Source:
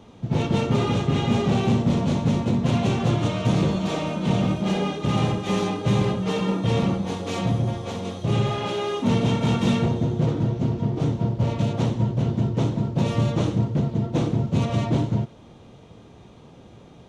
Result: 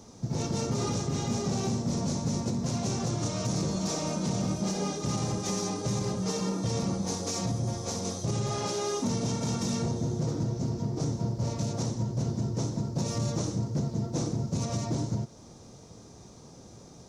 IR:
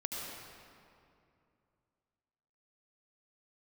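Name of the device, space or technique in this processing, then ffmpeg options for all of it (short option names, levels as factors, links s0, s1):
over-bright horn tweeter: -af "highshelf=f=4100:t=q:w=3:g=10,alimiter=limit=0.126:level=0:latency=1:release=232,volume=0.708"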